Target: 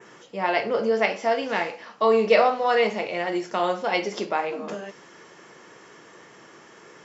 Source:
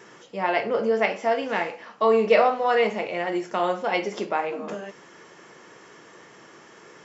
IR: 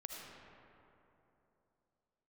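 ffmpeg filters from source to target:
-af "adynamicequalizer=threshold=0.00398:dfrequency=4700:dqfactor=1.4:tfrequency=4700:tqfactor=1.4:attack=5:release=100:ratio=0.375:range=3:mode=boostabove:tftype=bell"

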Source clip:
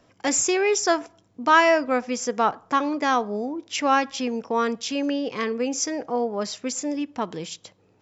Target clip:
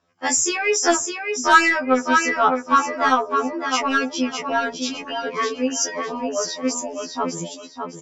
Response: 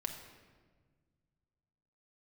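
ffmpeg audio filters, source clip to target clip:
-filter_complex "[0:a]afftdn=nr=13:nf=-34,lowpass=6200,equalizer=f=1300:t=o:w=0.62:g=5.5,aecho=1:1:607|1214|1821|2428:0.501|0.14|0.0393|0.011,asplit=2[s0][s1];[s1]acontrast=61,volume=1.26[s2];[s0][s2]amix=inputs=2:normalize=0,crystalizer=i=1.5:c=0,afftfilt=real='re*2*eq(mod(b,4),0)':imag='im*2*eq(mod(b,4),0)':win_size=2048:overlap=0.75,volume=0.447"

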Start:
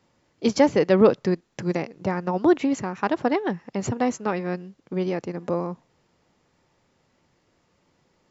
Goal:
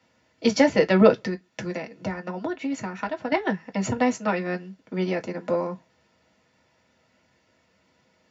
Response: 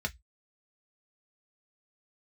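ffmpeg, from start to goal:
-filter_complex "[0:a]highpass=f=390:p=1,asettb=1/sr,asplit=3[s0][s1][s2];[s0]atrim=end=1.154[s3];[s1]atrim=start=1.15:end=3.32,asetpts=PTS-STARTPTS,afade=t=in:d=0.004:c=qsin,afade=t=out:st=2.166:d=0.004:c=qsin,acompressor=threshold=0.0316:ratio=5[s4];[s2]atrim=start=3.316[s5];[s3][s4]acrossfade=d=0.004:c1=hsin:c2=qsin[s6];[s6][s5]acrossfade=d=0.004:c1=qsin:c2=hsin[s7];[1:a]atrim=start_sample=2205,atrim=end_sample=6174[s8];[s7][s8]afir=irnorm=-1:irlink=0"

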